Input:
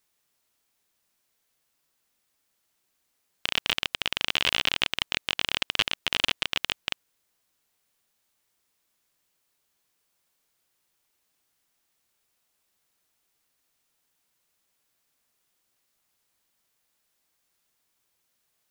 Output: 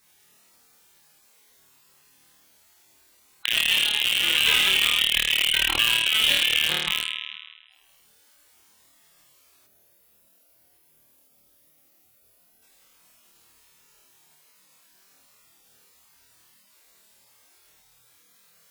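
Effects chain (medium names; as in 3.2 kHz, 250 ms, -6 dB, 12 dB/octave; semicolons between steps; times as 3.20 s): on a send: flutter echo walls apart 4.5 m, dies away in 1.1 s; on the sum: spectral gate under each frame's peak -10 dB strong; in parallel at 0 dB: compression 6:1, threshold -39 dBFS, peak gain reduction 19.5 dB; on the sum: time-frequency box 9.67–12.63 s, 760–10000 Hz -8 dB; Chebyshev shaper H 4 -34 dB, 5 -7 dB, 7 -15 dB, 8 -43 dB, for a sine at -14 dBFS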